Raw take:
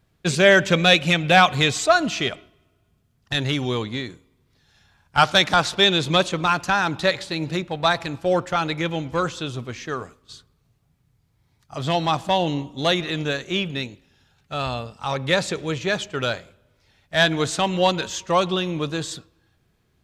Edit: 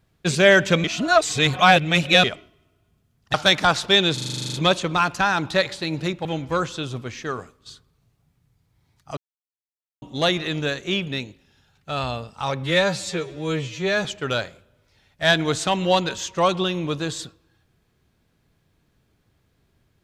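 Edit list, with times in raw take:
0:00.84–0:02.24: reverse
0:03.34–0:05.23: remove
0:06.03: stutter 0.04 s, 11 plays
0:07.74–0:08.88: remove
0:11.80–0:12.65: silence
0:15.26–0:15.97: time-stretch 2×

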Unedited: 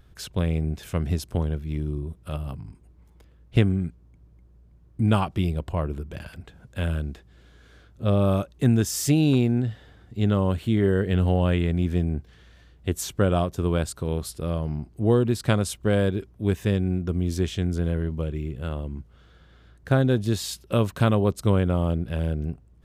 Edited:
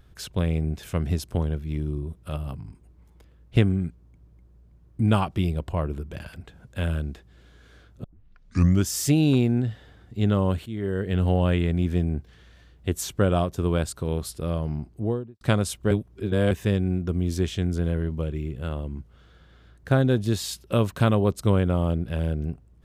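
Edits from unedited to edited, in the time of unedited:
0:08.04: tape start 0.84 s
0:10.66–0:11.31: fade in, from −14 dB
0:14.80–0:15.41: fade out and dull
0:15.91–0:16.51: reverse

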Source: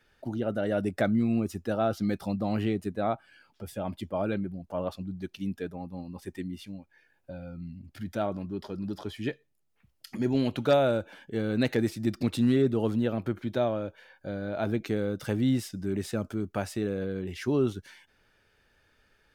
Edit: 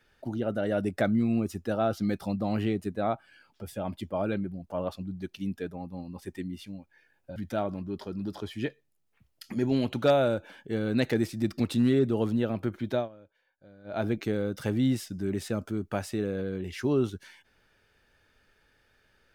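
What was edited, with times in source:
0:07.36–0:07.99: remove
0:13.59–0:14.60: duck −19 dB, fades 0.13 s

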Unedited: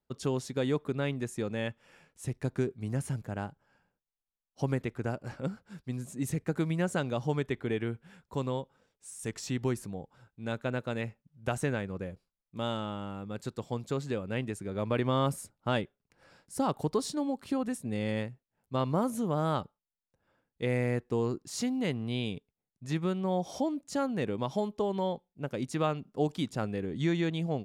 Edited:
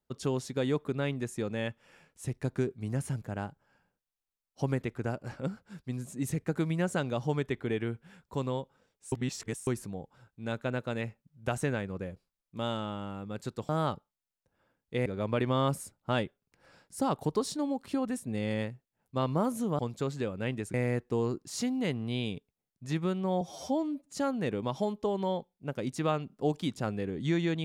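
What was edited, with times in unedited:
0:09.12–0:09.67: reverse
0:13.69–0:14.64: swap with 0:19.37–0:20.74
0:23.41–0:23.90: time-stretch 1.5×

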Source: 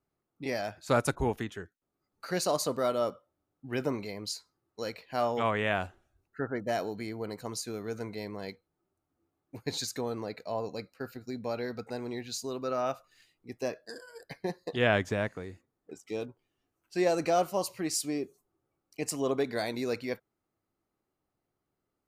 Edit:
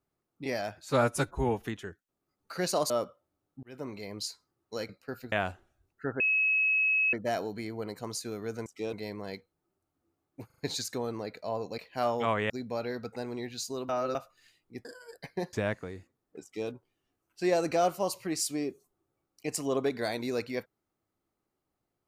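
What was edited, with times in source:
0:00.85–0:01.39: time-stretch 1.5×
0:02.63–0:02.96: remove
0:03.69–0:04.20: fade in
0:04.95–0:05.67: swap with 0:10.81–0:11.24
0:06.55: insert tone 2,570 Hz −23 dBFS 0.93 s
0:09.61: stutter 0.04 s, 4 plays
0:12.63–0:12.89: reverse
0:13.59–0:13.92: remove
0:14.60–0:15.07: remove
0:15.97–0:16.24: duplicate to 0:08.08

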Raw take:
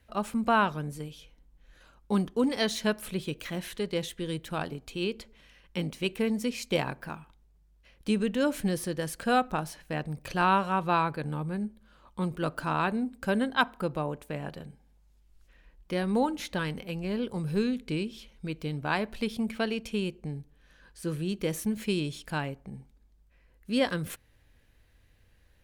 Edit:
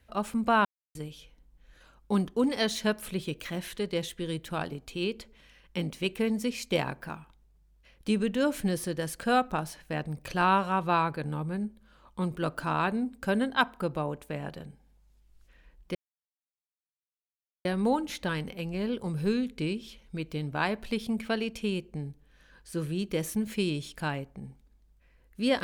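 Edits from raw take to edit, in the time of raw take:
0:00.65–0:00.95: silence
0:15.95: splice in silence 1.70 s

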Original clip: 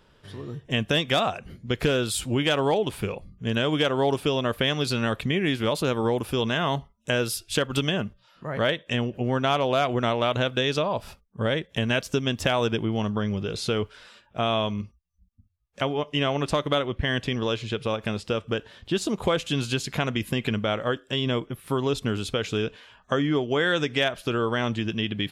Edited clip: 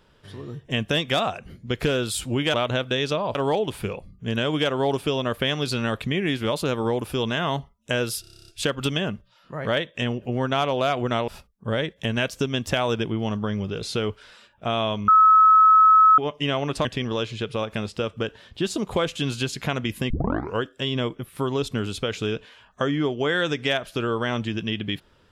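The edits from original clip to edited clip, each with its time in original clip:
0:07.40: stutter 0.03 s, 10 plays
0:10.20–0:11.01: move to 0:02.54
0:14.81–0:15.91: beep over 1,290 Hz −10.5 dBFS
0:16.58–0:17.16: remove
0:20.41: tape start 0.52 s

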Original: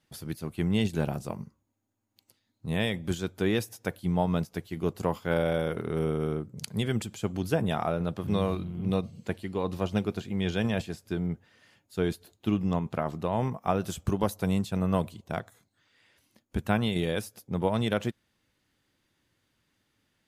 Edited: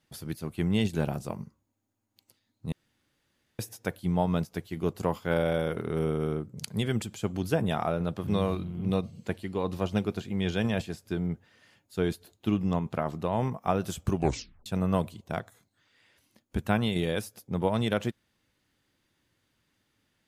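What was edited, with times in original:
0:02.72–0:03.59: fill with room tone
0:14.12: tape stop 0.54 s

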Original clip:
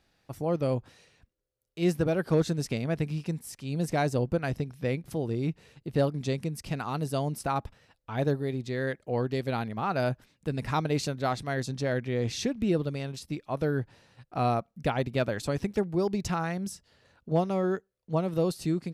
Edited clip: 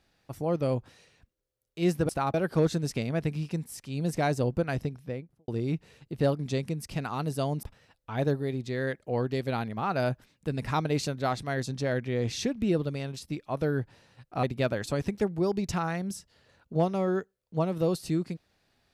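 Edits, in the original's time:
0:04.54–0:05.23: fade out and dull
0:07.38–0:07.63: move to 0:02.09
0:14.43–0:14.99: remove

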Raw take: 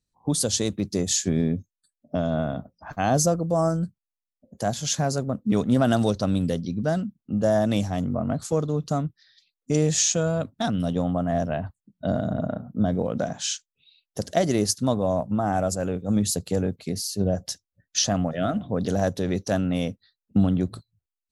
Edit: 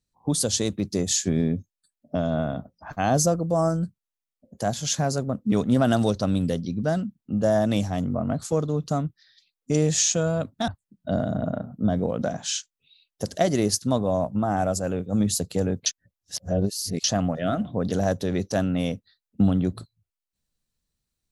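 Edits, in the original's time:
0:10.68–0:11.64: remove
0:16.82–0:18.00: reverse

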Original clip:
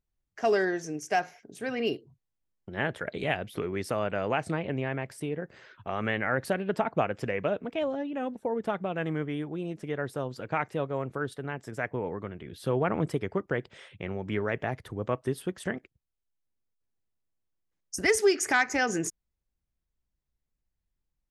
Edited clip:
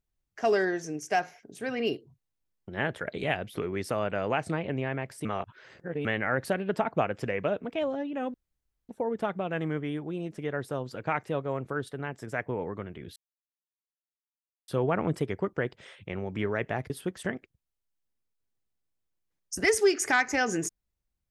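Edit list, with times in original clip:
0:05.25–0:06.05: reverse
0:08.34: splice in room tone 0.55 s
0:12.61: splice in silence 1.52 s
0:14.83–0:15.31: remove

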